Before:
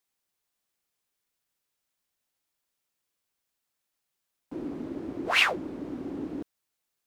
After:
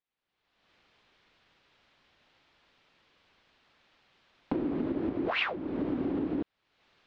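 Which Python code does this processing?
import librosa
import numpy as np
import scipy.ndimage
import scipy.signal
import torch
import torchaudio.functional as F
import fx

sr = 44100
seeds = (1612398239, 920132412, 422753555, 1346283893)

y = fx.recorder_agc(x, sr, target_db=-15.5, rise_db_per_s=42.0, max_gain_db=30)
y = scipy.signal.sosfilt(scipy.signal.butter(4, 3800.0, 'lowpass', fs=sr, output='sos'), y)
y = y * librosa.db_to_amplitude(-8.0)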